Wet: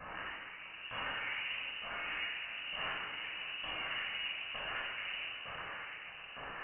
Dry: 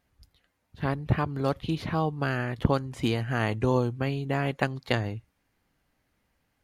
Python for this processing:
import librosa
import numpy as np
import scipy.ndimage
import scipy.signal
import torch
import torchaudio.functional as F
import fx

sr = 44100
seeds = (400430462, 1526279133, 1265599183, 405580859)

y = fx.delta_mod(x, sr, bps=32000, step_db=-21.5)
y = np.diff(y, prepend=0.0)
y = fx.over_compress(y, sr, threshold_db=-46.0, ratio=-1.0)
y = fx.ladder_highpass(y, sr, hz=320.0, resonance_pct=45)
y = fx.filter_lfo_lowpass(y, sr, shape='saw_down', hz=1.1, low_hz=490.0, high_hz=2500.0, q=1.9)
y = fx.echo_swing(y, sr, ms=989, ratio=1.5, feedback_pct=48, wet_db=-13)
y = fx.room_shoebox(y, sr, seeds[0], volume_m3=2200.0, walls='mixed', distance_m=5.3)
y = fx.freq_invert(y, sr, carrier_hz=3300)
y = y * librosa.db_to_amplitude(6.0)